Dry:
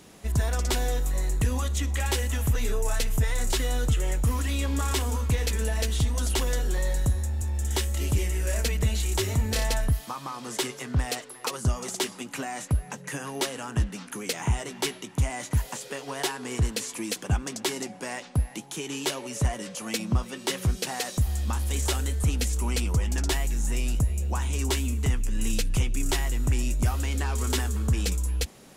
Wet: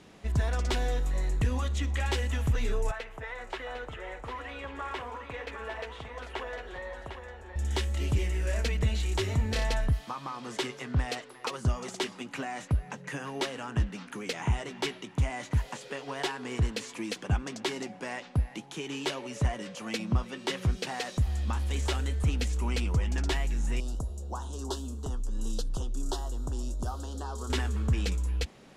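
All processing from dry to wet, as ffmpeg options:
ffmpeg -i in.wav -filter_complex "[0:a]asettb=1/sr,asplit=3[link_01][link_02][link_03];[link_01]atrim=end=2.914[link_04];[link_02]atrim=start=2.91:end=7.56,asetpts=PTS-STARTPTS,afade=type=in:duration=0.004:curve=qsin,afade=type=out:start_time=4.646:duration=0.004:curve=qsin,acrossover=split=420 2600:gain=0.1 1 0.126[link_05][link_06][link_07];[link_05][link_06][link_07]amix=inputs=3:normalize=0,aecho=1:1:753:0.422,atrim=end_sample=205065[link_08];[link_03]atrim=start=7.556[link_09];[link_04][link_08]acrossfade=duration=0.004:curve1=hsin:curve2=qsin[link_10];[link_10][link_09]acrossfade=duration=0.004:curve1=qsin:curve2=hsin,asettb=1/sr,asplit=3[link_11][link_12][link_13];[link_11]atrim=end=23.804[link_14];[link_12]atrim=start=23.8:end=27.5,asetpts=PTS-STARTPTS,afade=type=in:duration=0.004:curve=qsin,afade=type=out:start_time=3.696:duration=0.004:curve=qsin,asuperstop=centerf=2200:order=4:qfactor=0.84,equalizer=frequency=110:width_type=o:width=2.1:gain=-11.5[link_15];[link_13]atrim=start=27.496[link_16];[link_14][link_15]acrossfade=duration=0.004:curve1=hsin:curve2=qsin[link_17];[link_17][link_16]acrossfade=duration=0.004:curve1=qsin:curve2=hsin,lowpass=3000,aemphasis=mode=production:type=50fm,volume=-2dB" out.wav

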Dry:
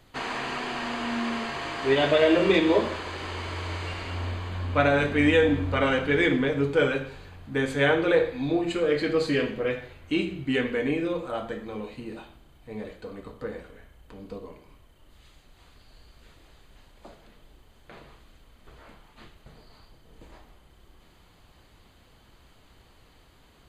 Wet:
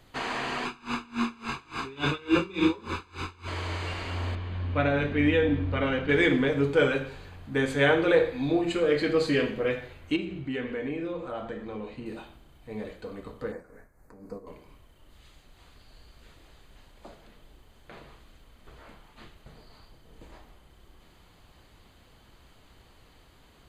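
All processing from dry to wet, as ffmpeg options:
ffmpeg -i in.wav -filter_complex "[0:a]asettb=1/sr,asplit=3[link_01][link_02][link_03];[link_01]atrim=end=0.654[link_04];[link_02]atrim=start=0.65:end=3.48,asetpts=PTS-STARTPTS,afade=type=in:duration=0.004:curve=qsin,afade=type=out:start_time=2.826:duration=0.004:curve=qsin,aecho=1:1:0.8:1,atrim=end_sample=124803,aeval=exprs='val(0)*pow(10,-27*(0.5-0.5*cos(2*PI*3.5*n/s))/20)':channel_layout=same[link_05];[link_03]atrim=start=3.476[link_06];[link_04][link_05]acrossfade=duration=0.004:curve1=hsin:curve2=qsin[link_07];[link_07][link_06]acrossfade=duration=0.004:curve1=qsin:curve2=hsin,asettb=1/sr,asplit=3[link_08][link_09][link_10];[link_08]atrim=end=4.354[link_11];[link_09]atrim=start=4.35:end=6.09,asetpts=PTS-STARTPTS,afade=type=in:duration=0.004:curve=qsin,afade=type=out:start_time=1.736:duration=0.004:curve=qsin,lowpass=3200,equalizer=frequency=980:width=0.48:gain=-6[link_12];[link_10]atrim=start=6.086[link_13];[link_11][link_12]acrossfade=duration=0.004:curve1=hsin:curve2=qsin[link_14];[link_14][link_13]acrossfade=duration=0.004:curve1=qsin:curve2=hsin,asettb=1/sr,asplit=3[link_15][link_16][link_17];[link_15]atrim=end=10.164[link_18];[link_16]atrim=start=10.16:end=12.06,asetpts=PTS-STARTPTS,afade=type=in:duration=0.004:curve=qsin,afade=type=out:start_time=1.896:duration=0.004:curve=qsin,lowpass=frequency=3000:poles=1,acompressor=threshold=-33dB:ratio=2:attack=3.2:release=140:knee=1:detection=peak[link_19];[link_17]atrim=start=12.056[link_20];[link_18][link_19]acrossfade=duration=0.004:curve1=hsin:curve2=qsin[link_21];[link_21][link_20]acrossfade=duration=0.004:curve1=qsin:curve2=hsin,asettb=1/sr,asplit=3[link_22][link_23][link_24];[link_22]atrim=end=13.524[link_25];[link_23]atrim=start=13.52:end=14.47,asetpts=PTS-STARTPTS,afade=type=in:duration=0.004:curve=qsin,afade=type=out:start_time=0.946:duration=0.004:curve=qsin,equalizer=frequency=61:width_type=o:width=0.95:gain=-9.5,tremolo=f=3.8:d=0.58,asuperstop=centerf=3200:order=4:qfactor=0.95[link_26];[link_24]atrim=start=14.466[link_27];[link_25][link_26]acrossfade=duration=0.004:curve1=hsin:curve2=qsin[link_28];[link_28][link_27]acrossfade=duration=0.004:curve1=qsin:curve2=hsin" out.wav

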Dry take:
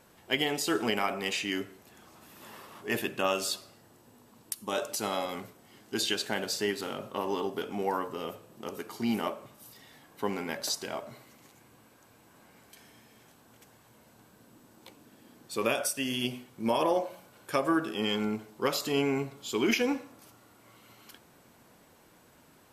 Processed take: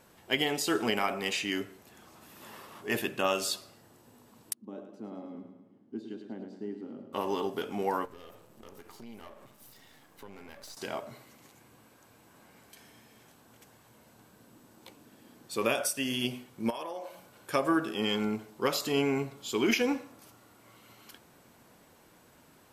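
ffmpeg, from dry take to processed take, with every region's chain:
ffmpeg -i in.wav -filter_complex "[0:a]asettb=1/sr,asplit=3[link_01][link_02][link_03];[link_01]atrim=end=4.534[link_04];[link_02]atrim=start=4.53:end=7.13,asetpts=PTS-STARTPTS,afade=type=in:duration=0.004:curve=qsin,afade=type=out:start_time=2.596:duration=0.004:curve=qsin,bandpass=frequency=250:width_type=q:width=2.7,aecho=1:1:106|212|318|424|530|636:0.398|0.215|0.116|0.0627|0.0339|0.0183,atrim=end_sample=114660[link_05];[link_03]atrim=start=7.126[link_06];[link_04][link_05]acrossfade=duration=0.004:curve1=hsin:curve2=qsin[link_07];[link_07][link_06]acrossfade=duration=0.004:curve1=qsin:curve2=hsin,asettb=1/sr,asplit=3[link_08][link_09][link_10];[link_08]atrim=end=8.054[link_11];[link_09]atrim=start=8.05:end=10.77,asetpts=PTS-STARTPTS,afade=type=in:duration=0.004:curve=qsin,afade=type=out:start_time=2.716:duration=0.004:curve=qsin,aeval=exprs='if(lt(val(0),0),0.251*val(0),val(0))':channel_layout=same,acompressor=threshold=-47dB:ratio=3:attack=3.2:release=140:knee=1:detection=peak[link_12];[link_10]atrim=start=10.766[link_13];[link_11][link_12]acrossfade=duration=0.004:curve1=hsin:curve2=qsin[link_14];[link_14][link_13]acrossfade=duration=0.004:curve1=qsin:curve2=hsin,asettb=1/sr,asplit=3[link_15][link_16][link_17];[link_15]atrim=end=16.704[link_18];[link_16]atrim=start=16.7:end=17.15,asetpts=PTS-STARTPTS,afade=type=in:duration=0.004:curve=qsin,afade=type=out:start_time=0.446:duration=0.004:curve=qsin,lowshelf=frequency=340:gain=-12,acompressor=threshold=-35dB:ratio=6:attack=3.2:release=140:knee=1:detection=peak[link_19];[link_17]atrim=start=17.146[link_20];[link_18][link_19]acrossfade=duration=0.004:curve1=hsin:curve2=qsin[link_21];[link_21][link_20]acrossfade=duration=0.004:curve1=qsin:curve2=hsin" out.wav

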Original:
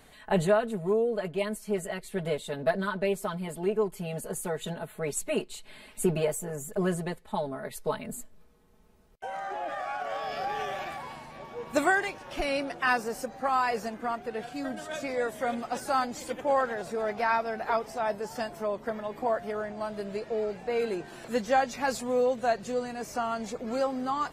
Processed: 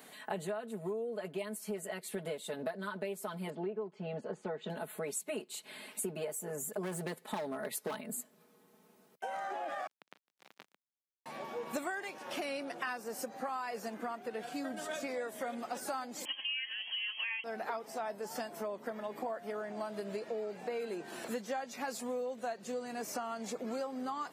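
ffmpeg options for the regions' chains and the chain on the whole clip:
ffmpeg -i in.wav -filter_complex "[0:a]asettb=1/sr,asplit=3[link_01][link_02][link_03];[link_01]atrim=end=3.504[link_04];[link_02]atrim=start=3.5:end=4.7,asetpts=PTS-STARTPTS,afade=type=in:duration=0.004:curve=qsin,afade=type=out:start_time=1.196:duration=0.004:curve=qsin,lowpass=frequency=5200:width=0.5412,lowpass=frequency=5200:width=1.3066,highshelf=frequency=2500:gain=-11[link_05];[link_03]atrim=start=4.696[link_06];[link_04][link_05]acrossfade=duration=0.004:curve1=hsin:curve2=qsin[link_07];[link_07][link_06]acrossfade=duration=0.004:curve1=qsin:curve2=hsin,asettb=1/sr,asplit=3[link_08][link_09][link_10];[link_08]atrim=end=6.834[link_11];[link_09]atrim=start=6.83:end=8.01,asetpts=PTS-STARTPTS,afade=type=in:duration=0.004:curve=qsin,afade=type=out:start_time=1.176:duration=0.004:curve=qsin,acontrast=68,asoftclip=type=hard:threshold=-23.5dB[link_12];[link_10]atrim=start=8.006[link_13];[link_11][link_12]acrossfade=duration=0.004:curve1=hsin:curve2=qsin[link_14];[link_14][link_13]acrossfade=duration=0.004:curve1=qsin:curve2=hsin,asettb=1/sr,asplit=3[link_15][link_16][link_17];[link_15]atrim=end=9.874[link_18];[link_16]atrim=start=9.87:end=11.26,asetpts=PTS-STARTPTS,afade=type=in:duration=0.004:curve=qsin,afade=type=out:start_time=1.386:duration=0.004:curve=qsin,highpass=96,equalizer=frequency=3100:width=0.46:gain=-9.5,acrusher=bits=3:mix=0:aa=0.5[link_19];[link_17]atrim=start=11.256[link_20];[link_18][link_19]acrossfade=duration=0.004:curve1=hsin:curve2=qsin[link_21];[link_21][link_20]acrossfade=duration=0.004:curve1=qsin:curve2=hsin,asettb=1/sr,asplit=3[link_22][link_23][link_24];[link_22]atrim=end=16.254[link_25];[link_23]atrim=start=16.25:end=17.44,asetpts=PTS-STARTPTS,afade=type=in:duration=0.004:curve=qsin,afade=type=out:start_time=1.186:duration=0.004:curve=qsin,bandreject=frequency=2000:width=5.2,lowpass=frequency=2900:width_type=q:width=0.5098,lowpass=frequency=2900:width_type=q:width=0.6013,lowpass=frequency=2900:width_type=q:width=0.9,lowpass=frequency=2900:width_type=q:width=2.563,afreqshift=-3400[link_26];[link_24]atrim=start=17.436[link_27];[link_25][link_26]acrossfade=duration=0.004:curve1=hsin:curve2=qsin[link_28];[link_28][link_27]acrossfade=duration=0.004:curve1=qsin:curve2=hsin,highpass=frequency=180:width=0.5412,highpass=frequency=180:width=1.3066,highshelf=frequency=11000:gain=9,acompressor=threshold=-37dB:ratio=6,volume=1dB" out.wav

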